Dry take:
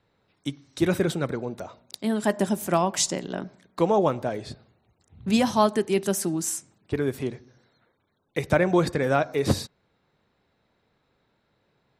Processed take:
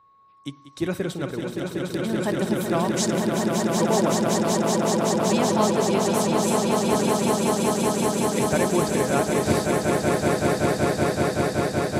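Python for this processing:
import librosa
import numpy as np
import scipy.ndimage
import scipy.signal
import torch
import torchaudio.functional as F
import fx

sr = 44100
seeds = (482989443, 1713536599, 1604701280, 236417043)

y = x + 10.0 ** (-51.0 / 20.0) * np.sin(2.0 * np.pi * 1100.0 * np.arange(len(x)) / sr)
y = fx.echo_swell(y, sr, ms=189, loudest=8, wet_db=-4.0)
y = F.gain(torch.from_numpy(y), -3.5).numpy()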